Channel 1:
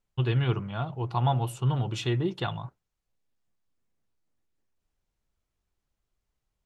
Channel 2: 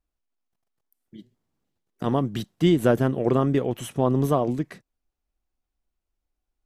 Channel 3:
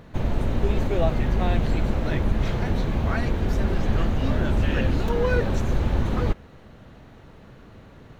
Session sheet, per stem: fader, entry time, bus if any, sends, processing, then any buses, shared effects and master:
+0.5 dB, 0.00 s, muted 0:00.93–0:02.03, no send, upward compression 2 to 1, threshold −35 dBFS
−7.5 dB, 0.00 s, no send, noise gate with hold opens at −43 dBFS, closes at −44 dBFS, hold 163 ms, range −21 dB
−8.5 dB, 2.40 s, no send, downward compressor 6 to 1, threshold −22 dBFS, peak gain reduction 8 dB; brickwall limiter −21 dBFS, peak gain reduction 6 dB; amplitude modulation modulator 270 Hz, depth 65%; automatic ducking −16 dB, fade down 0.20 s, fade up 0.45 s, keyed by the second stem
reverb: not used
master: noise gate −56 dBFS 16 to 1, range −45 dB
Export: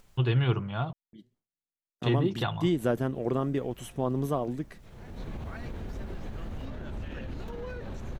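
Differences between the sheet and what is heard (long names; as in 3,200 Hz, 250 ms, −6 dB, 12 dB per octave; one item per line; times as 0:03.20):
stem 3: missing amplitude modulation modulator 270 Hz, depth 65%
master: missing noise gate −56 dBFS 16 to 1, range −45 dB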